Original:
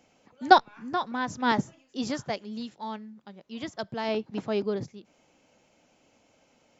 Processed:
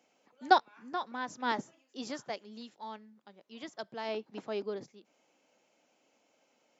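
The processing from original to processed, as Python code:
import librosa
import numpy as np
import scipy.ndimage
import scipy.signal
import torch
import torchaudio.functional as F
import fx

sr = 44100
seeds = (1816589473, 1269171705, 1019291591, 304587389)

y = scipy.signal.sosfilt(scipy.signal.butter(2, 280.0, 'highpass', fs=sr, output='sos'), x)
y = y * 10.0 ** (-6.5 / 20.0)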